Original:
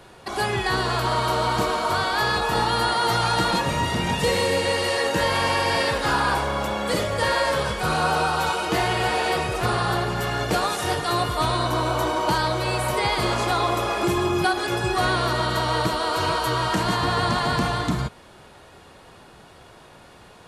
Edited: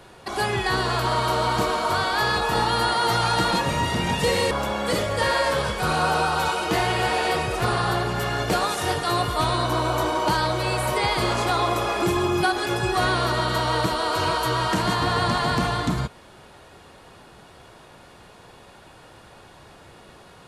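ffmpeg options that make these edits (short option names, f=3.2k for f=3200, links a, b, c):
-filter_complex "[0:a]asplit=2[a][b];[a]atrim=end=4.512[c];[b]atrim=start=6.518[d];[c][d]acrossfade=d=0.004:c1=hsin:c2=hsin"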